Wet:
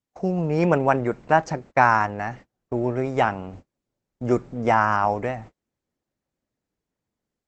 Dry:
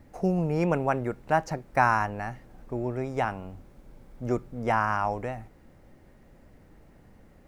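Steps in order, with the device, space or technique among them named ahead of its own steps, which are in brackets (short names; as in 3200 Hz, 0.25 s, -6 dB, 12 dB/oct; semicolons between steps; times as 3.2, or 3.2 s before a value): 4.5–5.16 dynamic EQ 2200 Hz, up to -3 dB, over -42 dBFS, Q 1.3; video call (HPF 110 Hz 6 dB/oct; AGC gain up to 6 dB; gate -41 dBFS, range -35 dB; gain +1.5 dB; Opus 12 kbps 48000 Hz)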